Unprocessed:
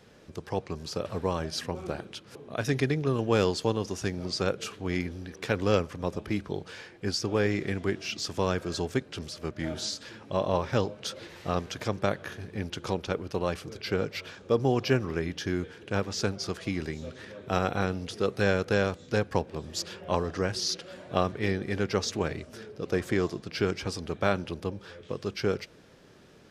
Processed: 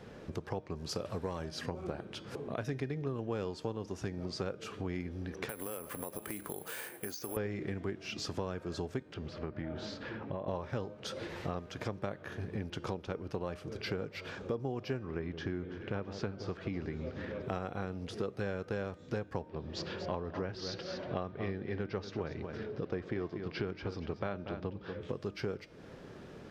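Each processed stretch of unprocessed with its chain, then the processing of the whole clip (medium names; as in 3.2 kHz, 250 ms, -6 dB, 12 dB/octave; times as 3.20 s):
0.89–1.49 s: treble shelf 3.8 kHz +11 dB + hard clipper -17.5 dBFS
5.49–7.37 s: high-pass 510 Hz 6 dB/octave + compression 4:1, threshold -39 dBFS + careless resampling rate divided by 4×, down filtered, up zero stuff
9.14–10.48 s: low-pass 2.7 kHz + compression 2.5:1, threshold -36 dBFS
14.99–17.42 s: low-pass 4 kHz + echo whose repeats swap between lows and highs 167 ms, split 1.1 kHz, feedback 75%, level -13.5 dB
19.49–25.01 s: low-pass 5 kHz 24 dB/octave + delay 237 ms -12 dB
whole clip: treble shelf 2.7 kHz -11 dB; de-hum 306.7 Hz, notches 31; compression 4:1, threshold -43 dBFS; trim +6.5 dB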